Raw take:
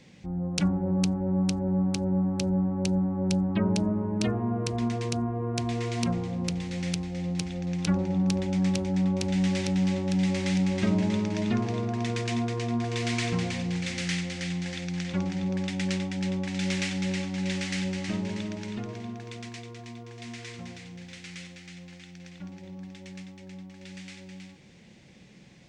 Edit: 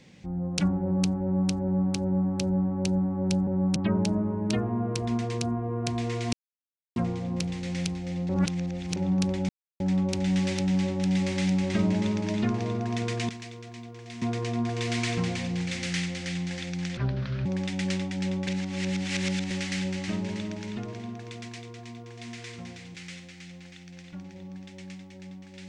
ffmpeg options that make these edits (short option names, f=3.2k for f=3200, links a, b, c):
-filter_complex "[0:a]asplit=15[a][b][c][d][e][f][g][h][i][j][k][l][m][n][o];[a]atrim=end=3.472[p];[b]atrim=start=1.218:end=1.512[q];[c]atrim=start=3.468:end=6.04,asetpts=PTS-STARTPTS,afade=t=out:st=2.568:d=0.004:c=hsin,apad=pad_dur=0.63[r];[d]atrim=start=6.04:end=7.372,asetpts=PTS-STARTPTS,afade=t=in:d=0.004:c=hsin[s];[e]atrim=start=7.368:end=8.042,asetpts=PTS-STARTPTS,areverse[t];[f]atrim=start=8.038:end=8.57,asetpts=PTS-STARTPTS,afade=t=out:st=0.528:d=0.004:c=hsin[u];[g]atrim=start=8.57:end=8.88,asetpts=PTS-STARTPTS,volume=0[v];[h]atrim=start=8.88:end=12.372,asetpts=PTS-STARTPTS,afade=t=in:d=0.004:c=hsin[w];[i]atrim=start=19.408:end=20.342[x];[j]atrim=start=12.368:end=15.124[y];[k]atrim=start=15.12:end=15.46,asetpts=PTS-STARTPTS,asetrate=30870,aresample=44100[z];[l]atrim=start=15.456:end=16.482[aa];[m]atrim=start=16.478:end=17.512,asetpts=PTS-STARTPTS,areverse[ab];[n]atrim=start=17.508:end=20.952[ac];[o]atrim=start=21.218[ad];[p][q]acrossfade=d=0.004:c1=hsin:c2=hsin[ae];[r][s]concat=n=2:v=0:a=1[af];[ae][af]acrossfade=d=0.004:c1=hsin:c2=hsin[ag];[ag][t]acrossfade=d=0.004:c1=hsin:c2=hsin[ah];[u][v][w]concat=n=3:v=0:a=1[ai];[ah][ai]acrossfade=d=0.004:c1=hsin:c2=hsin[aj];[aj][x]acrossfade=d=0.004:c1=hsin:c2=hsin[ak];[ak][y]acrossfade=d=0.004:c1=hsin:c2=hsin[al];[al][z]acrossfade=d=0.004:c1=hsin:c2=hsin[am];[am][aa]acrossfade=d=0.004:c1=hsin:c2=hsin[an];[an][ab]acrossfade=d=0.004:c1=hsin:c2=hsin[ao];[ao][ac]acrossfade=d=0.004:c1=hsin:c2=hsin[ap];[ap][ad]acrossfade=d=0.004:c1=hsin:c2=hsin"